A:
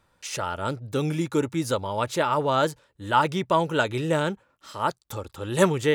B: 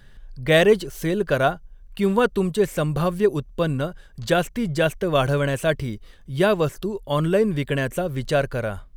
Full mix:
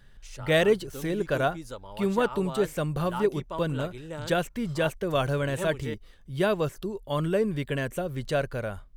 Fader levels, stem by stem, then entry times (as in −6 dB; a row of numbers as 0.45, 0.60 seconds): −14.5, −6.0 decibels; 0.00, 0.00 seconds